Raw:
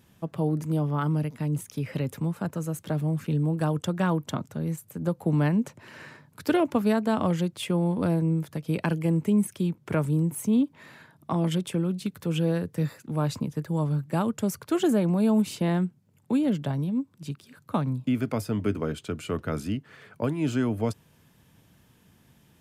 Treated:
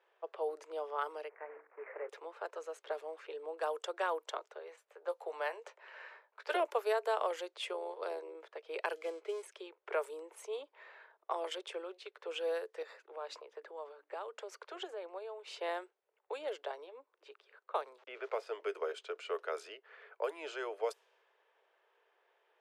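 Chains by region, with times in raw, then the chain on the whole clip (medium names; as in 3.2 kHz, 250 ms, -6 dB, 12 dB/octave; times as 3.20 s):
1.29–2.09 s: CVSD coder 16 kbps + steep low-pass 2.1 kHz 48 dB/octave + hum notches 50/100/150/200/250/300/350/400/450/500 Hz
4.59–6.55 s: high-pass 470 Hz + doubling 17 ms -10.5 dB
7.73–8.35 s: peaking EQ 4.4 kHz +4.5 dB 0.71 oct + AM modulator 73 Hz, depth 45%
8.95–9.43 s: dead-time distortion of 0.086 ms + comb of notches 920 Hz
12.82–15.59 s: hum notches 60/120/180/240/300 Hz + compression 12:1, threshold -28 dBFS
17.98–18.47 s: low-pass 3.3 kHz + small samples zeroed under -47 dBFS
whole clip: steep high-pass 400 Hz 72 dB/octave; level-controlled noise filter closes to 2.1 kHz, open at -27.5 dBFS; treble shelf 7.2 kHz -6.5 dB; trim -4.5 dB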